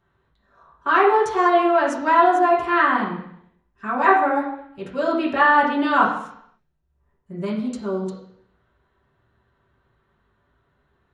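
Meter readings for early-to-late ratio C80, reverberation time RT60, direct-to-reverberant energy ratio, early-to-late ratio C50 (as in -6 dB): 8.5 dB, 0.70 s, -8.0 dB, 5.0 dB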